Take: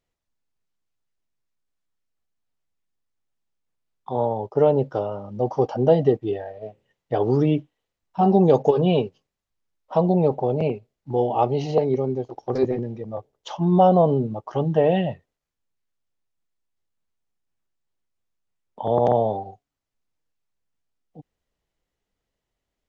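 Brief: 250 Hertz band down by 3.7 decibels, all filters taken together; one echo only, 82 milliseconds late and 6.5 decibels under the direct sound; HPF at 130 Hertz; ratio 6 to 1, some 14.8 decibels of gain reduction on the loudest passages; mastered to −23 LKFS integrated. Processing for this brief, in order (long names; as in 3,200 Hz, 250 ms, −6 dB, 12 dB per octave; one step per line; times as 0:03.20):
high-pass filter 130 Hz
parametric band 250 Hz −5 dB
downward compressor 6 to 1, threshold −29 dBFS
single-tap delay 82 ms −6.5 dB
level +10.5 dB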